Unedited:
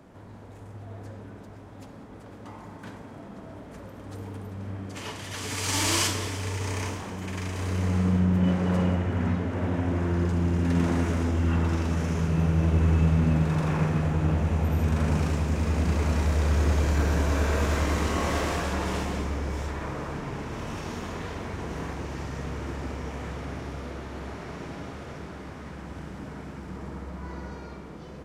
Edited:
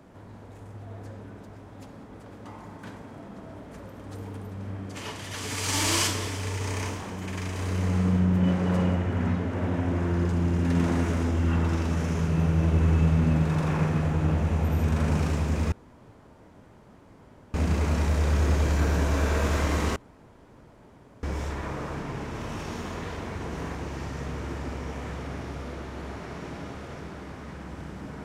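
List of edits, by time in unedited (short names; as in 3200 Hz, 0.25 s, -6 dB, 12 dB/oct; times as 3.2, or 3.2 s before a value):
15.72 insert room tone 1.82 s
18.14–19.41 room tone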